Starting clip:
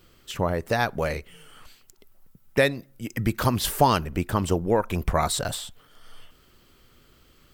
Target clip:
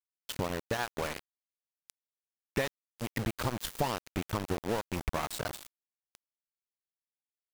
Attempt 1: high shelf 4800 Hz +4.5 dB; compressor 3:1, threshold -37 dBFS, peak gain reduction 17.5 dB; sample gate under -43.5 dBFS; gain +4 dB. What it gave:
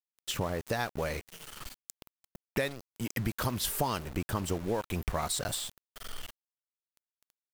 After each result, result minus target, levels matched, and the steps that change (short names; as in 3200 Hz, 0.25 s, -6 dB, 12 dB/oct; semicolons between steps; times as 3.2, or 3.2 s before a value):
sample gate: distortion -10 dB; 8000 Hz band +5.0 dB
change: sample gate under -34.5 dBFS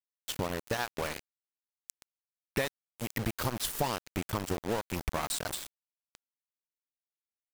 8000 Hz band +4.0 dB
change: high shelf 4800 Hz -5 dB